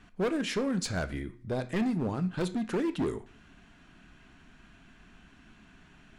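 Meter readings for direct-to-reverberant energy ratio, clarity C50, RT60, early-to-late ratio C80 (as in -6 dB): 9.5 dB, 16.0 dB, 0.45 s, 21.0 dB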